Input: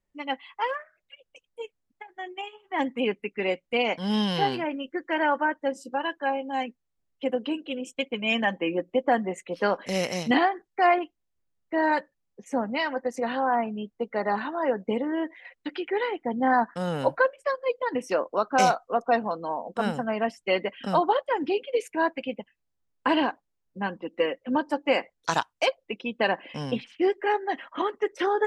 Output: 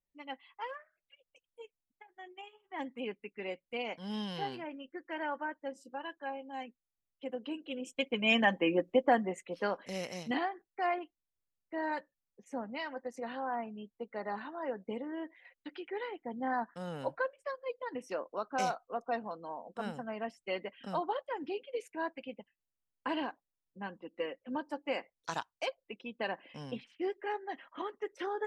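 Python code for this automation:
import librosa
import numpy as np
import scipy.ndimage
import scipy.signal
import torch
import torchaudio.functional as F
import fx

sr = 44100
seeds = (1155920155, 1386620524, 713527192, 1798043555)

y = fx.gain(x, sr, db=fx.line((7.27, -13.0), (8.22, -2.0), (8.91, -2.0), (9.98, -12.0)))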